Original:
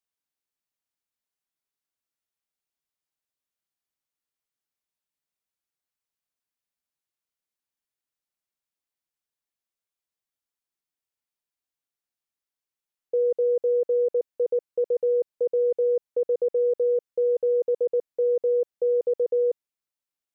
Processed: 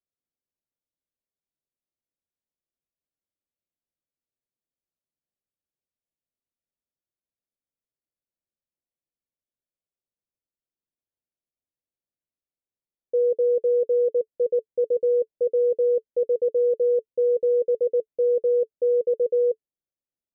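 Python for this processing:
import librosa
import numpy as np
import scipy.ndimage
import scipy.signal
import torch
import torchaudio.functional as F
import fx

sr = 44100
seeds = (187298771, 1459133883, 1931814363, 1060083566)

y = scipy.signal.sosfilt(scipy.signal.cheby1(3, 1.0, 560.0, 'lowpass', fs=sr, output='sos'), x)
y = fx.notch(y, sr, hz=440.0, q=12.0)
y = F.gain(torch.from_numpy(y), 2.5).numpy()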